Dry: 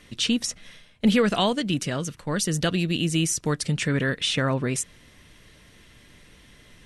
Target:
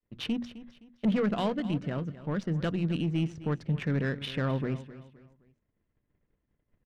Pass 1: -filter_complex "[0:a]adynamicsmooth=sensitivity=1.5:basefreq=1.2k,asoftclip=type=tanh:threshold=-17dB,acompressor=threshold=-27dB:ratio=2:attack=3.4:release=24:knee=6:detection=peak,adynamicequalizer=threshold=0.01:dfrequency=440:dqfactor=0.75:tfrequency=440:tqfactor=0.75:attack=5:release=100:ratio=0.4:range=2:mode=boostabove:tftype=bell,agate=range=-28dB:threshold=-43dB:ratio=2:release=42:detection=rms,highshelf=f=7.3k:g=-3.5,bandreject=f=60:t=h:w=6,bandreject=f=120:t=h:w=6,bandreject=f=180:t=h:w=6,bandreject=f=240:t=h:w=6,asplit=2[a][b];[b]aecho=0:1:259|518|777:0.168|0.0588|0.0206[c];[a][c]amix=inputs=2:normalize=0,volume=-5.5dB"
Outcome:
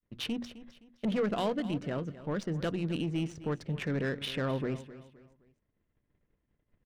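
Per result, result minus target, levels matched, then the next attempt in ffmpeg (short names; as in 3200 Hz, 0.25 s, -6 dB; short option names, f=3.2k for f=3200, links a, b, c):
8000 Hz band +7.0 dB; compressor: peak gain reduction +4.5 dB; 500 Hz band +3.0 dB
-filter_complex "[0:a]adynamicsmooth=sensitivity=1.5:basefreq=1.2k,asoftclip=type=tanh:threshold=-17dB,acompressor=threshold=-27dB:ratio=2:attack=3.4:release=24:knee=6:detection=peak,adynamicequalizer=threshold=0.01:dfrequency=440:dqfactor=0.75:tfrequency=440:tqfactor=0.75:attack=5:release=100:ratio=0.4:range=2:mode=boostabove:tftype=bell,agate=range=-28dB:threshold=-43dB:ratio=2:release=42:detection=rms,highshelf=f=7.3k:g=-15.5,bandreject=f=60:t=h:w=6,bandreject=f=120:t=h:w=6,bandreject=f=180:t=h:w=6,bandreject=f=240:t=h:w=6,asplit=2[a][b];[b]aecho=0:1:259|518|777:0.168|0.0588|0.0206[c];[a][c]amix=inputs=2:normalize=0,volume=-5.5dB"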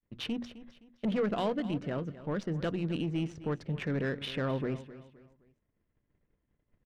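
compressor: peak gain reduction +4.5 dB; 500 Hz band +3.0 dB
-filter_complex "[0:a]adynamicsmooth=sensitivity=1.5:basefreq=1.2k,asoftclip=type=tanh:threshold=-17dB,adynamicequalizer=threshold=0.01:dfrequency=440:dqfactor=0.75:tfrequency=440:tqfactor=0.75:attack=5:release=100:ratio=0.4:range=2:mode=boostabove:tftype=bell,agate=range=-28dB:threshold=-43dB:ratio=2:release=42:detection=rms,highshelf=f=7.3k:g=-15.5,bandreject=f=60:t=h:w=6,bandreject=f=120:t=h:w=6,bandreject=f=180:t=h:w=6,bandreject=f=240:t=h:w=6,asplit=2[a][b];[b]aecho=0:1:259|518|777:0.168|0.0588|0.0206[c];[a][c]amix=inputs=2:normalize=0,volume=-5.5dB"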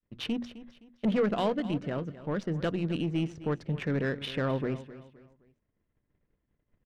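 500 Hz band +3.0 dB
-filter_complex "[0:a]adynamicsmooth=sensitivity=1.5:basefreq=1.2k,asoftclip=type=tanh:threshold=-17dB,adynamicequalizer=threshold=0.01:dfrequency=160:dqfactor=0.75:tfrequency=160:tqfactor=0.75:attack=5:release=100:ratio=0.4:range=2:mode=boostabove:tftype=bell,agate=range=-28dB:threshold=-43dB:ratio=2:release=42:detection=rms,highshelf=f=7.3k:g=-15.5,bandreject=f=60:t=h:w=6,bandreject=f=120:t=h:w=6,bandreject=f=180:t=h:w=6,bandreject=f=240:t=h:w=6,asplit=2[a][b];[b]aecho=0:1:259|518|777:0.168|0.0588|0.0206[c];[a][c]amix=inputs=2:normalize=0,volume=-5.5dB"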